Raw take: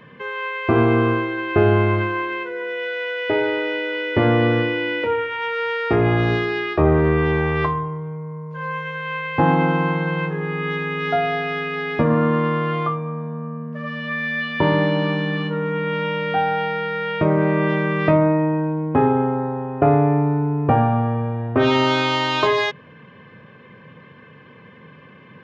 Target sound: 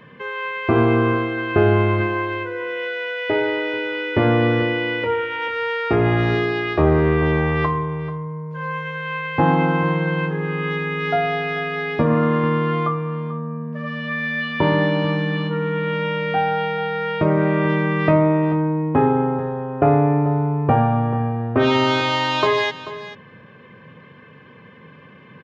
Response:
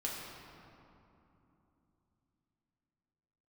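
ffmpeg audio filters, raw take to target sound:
-af "aecho=1:1:438:0.188"

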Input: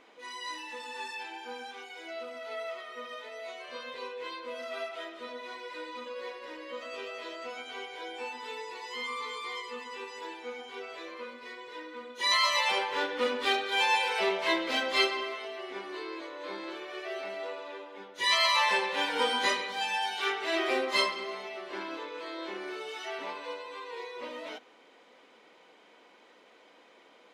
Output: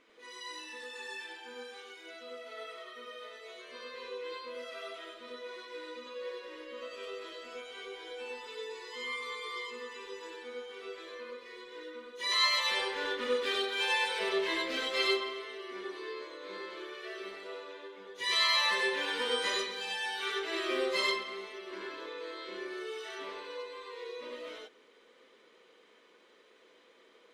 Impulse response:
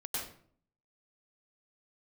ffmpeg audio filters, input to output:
-filter_complex "[0:a]equalizer=frequency=790:width_type=o:width=0.38:gain=-13.5[link_01];[1:a]atrim=start_sample=2205,atrim=end_sample=4410[link_02];[link_01][link_02]afir=irnorm=-1:irlink=0"

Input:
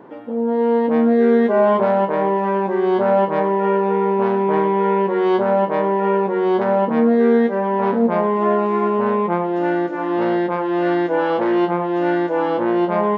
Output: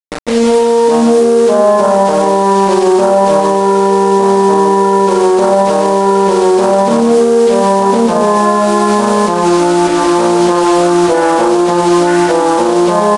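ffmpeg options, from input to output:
ffmpeg -i in.wav -filter_complex "[0:a]afwtdn=0.0501,highpass=130,equalizer=frequency=1000:width=0.85:gain=2.5,acrusher=bits=4:mix=0:aa=0.000001,asplit=2[link_01][link_02];[link_02]aecho=0:1:148:0.531[link_03];[link_01][link_03]amix=inputs=2:normalize=0,aresample=22050,aresample=44100,alimiter=level_in=12.5dB:limit=-1dB:release=50:level=0:latency=1,volume=-1dB" out.wav

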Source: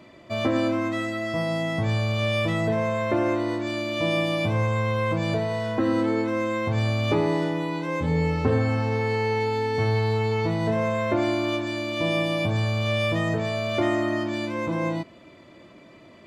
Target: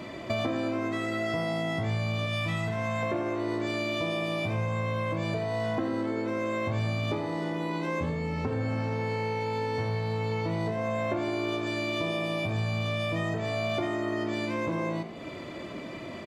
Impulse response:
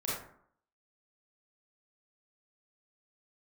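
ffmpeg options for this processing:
-filter_complex "[0:a]asettb=1/sr,asplit=3[link_01][link_02][link_03];[link_01]atrim=end=2.264[link_04];[link_02]atrim=start=2.26:end=3.03,asetpts=PTS-STARTPTS,afade=type=in:duration=0.004:curve=qsin,afade=type=out:start_time=0.766:duration=0.004:curve=qsin,equalizer=frequency=420:width=1.1:gain=-13.5[link_05];[link_03]atrim=start=3.026[link_06];[link_04][link_05]acrossfade=duration=0.004:curve1=hsin:curve2=qsin[link_07];[link_07][link_06]acrossfade=duration=0.004:curve1=qsin:curve2=hsin,acompressor=threshold=-37dB:ratio=12,asplit=6[link_08][link_09][link_10][link_11][link_12][link_13];[link_09]adelay=89,afreqshift=57,volume=-13.5dB[link_14];[link_10]adelay=178,afreqshift=114,volume=-19.9dB[link_15];[link_11]adelay=267,afreqshift=171,volume=-26.3dB[link_16];[link_12]adelay=356,afreqshift=228,volume=-32.6dB[link_17];[link_13]adelay=445,afreqshift=285,volume=-39dB[link_18];[link_08][link_14][link_15][link_16][link_17][link_18]amix=inputs=6:normalize=0,asplit=2[link_19][link_20];[1:a]atrim=start_sample=2205[link_21];[link_20][link_21]afir=irnorm=-1:irlink=0,volume=-16dB[link_22];[link_19][link_22]amix=inputs=2:normalize=0,volume=8.5dB"

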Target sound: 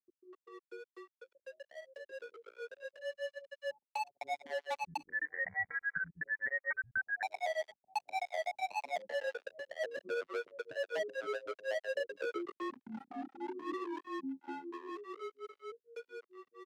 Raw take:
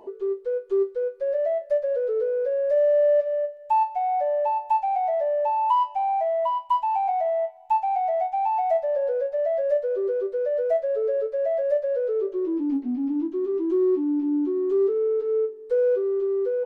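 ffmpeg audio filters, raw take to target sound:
ffmpeg -i in.wav -filter_complex "[0:a]acompressor=threshold=-27dB:ratio=8,flanger=delay=7.1:depth=5.4:regen=36:speed=0.96:shape=triangular,asoftclip=type=tanh:threshold=-33.5dB,acrusher=bits=4:mix=0:aa=0.5,highpass=220,afreqshift=-25,dynaudnorm=framelen=840:gausssize=7:maxgain=14dB,asettb=1/sr,asplit=3[link_01][link_02][link_03];[link_01]atrim=end=4.804[link_04];[link_02]atrim=start=4.8:end=6.98,asetpts=PTS-STARTPTS,afade=type=in:duration=0.004:curve=qsin,afade=type=out:start_time=2.176:duration=0.004:curve=qsin,lowpass=frequency=2100:width_type=q:width=0.5098,lowpass=frequency=2100:width_type=q:width=0.6013,lowpass=frequency=2100:width_type=q:width=0.9,lowpass=frequency=2100:width_type=q:width=2.563,afreqshift=-2500[link_05];[link_03]atrim=start=6.976[link_06];[link_04][link_05]acrossfade=duration=0.004:curve1=hsin:curve2=qsin[link_07];[link_07][link_06]acrossfade=duration=0.004:curve1=qsin:curve2=hsin,acrossover=split=350[link_08][link_09];[link_09]adelay=250[link_10];[link_08][link_10]amix=inputs=2:normalize=0,volume=10.5dB" out.wav

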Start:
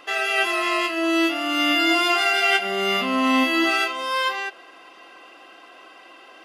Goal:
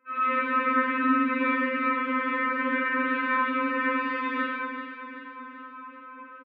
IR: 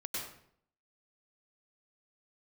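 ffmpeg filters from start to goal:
-filter_complex "[0:a]agate=range=-14dB:threshold=-37dB:ratio=16:detection=peak,dynaudnorm=framelen=210:gausssize=3:maxgain=13.5dB,aeval=exprs='(mod(5.62*val(0)+1,2)-1)/5.62':channel_layout=same,asuperstop=centerf=760:order=12:qfactor=1.9,asplit=2[link_01][link_02];[link_02]adelay=24,volume=-7dB[link_03];[link_01][link_03]amix=inputs=2:normalize=0,aecho=1:1:384|768|1152|1536|1920|2304:0.355|0.188|0.0997|0.0528|0.028|0.0148[link_04];[1:a]atrim=start_sample=2205,asetrate=57330,aresample=44100[link_05];[link_04][link_05]afir=irnorm=-1:irlink=0,highpass=frequency=200:width_type=q:width=0.5412,highpass=frequency=200:width_type=q:width=1.307,lowpass=frequency=2000:width_type=q:width=0.5176,lowpass=frequency=2000:width_type=q:width=0.7071,lowpass=frequency=2000:width_type=q:width=1.932,afreqshift=-55,afftfilt=real='re*3.46*eq(mod(b,12),0)':imag='im*3.46*eq(mod(b,12),0)':win_size=2048:overlap=0.75,volume=5dB"

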